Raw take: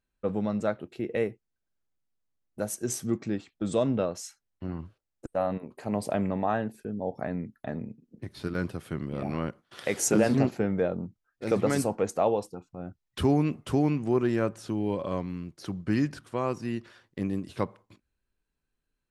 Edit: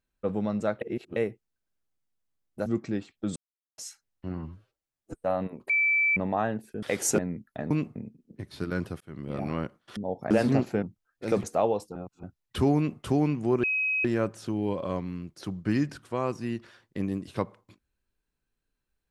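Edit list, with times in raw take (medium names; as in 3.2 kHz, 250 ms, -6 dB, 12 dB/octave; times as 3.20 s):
0.81–1.16 s: reverse
2.66–3.04 s: delete
3.74–4.16 s: mute
4.75–5.30 s: stretch 1.5×
5.80–6.27 s: bleep 2.32 kHz -20.5 dBFS
6.93–7.27 s: swap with 9.80–10.16 s
8.84–9.16 s: fade in
10.68–11.02 s: delete
11.63–12.06 s: delete
12.58–12.86 s: reverse
13.39–13.64 s: copy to 7.79 s
14.26 s: add tone 2.54 kHz -24 dBFS 0.41 s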